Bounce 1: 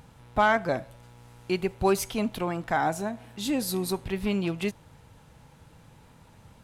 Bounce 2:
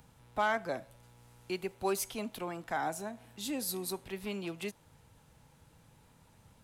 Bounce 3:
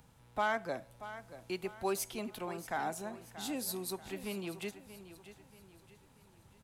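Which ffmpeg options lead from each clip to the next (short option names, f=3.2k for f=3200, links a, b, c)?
-filter_complex "[0:a]highshelf=f=6.1k:g=7.5,acrossover=split=210|470|3700[a][b][c][d];[a]acompressor=threshold=-44dB:ratio=6[e];[e][b][c][d]amix=inputs=4:normalize=0,volume=-8.5dB"
-af "aecho=1:1:633|1266|1899|2532:0.211|0.0867|0.0355|0.0146,volume=-2dB"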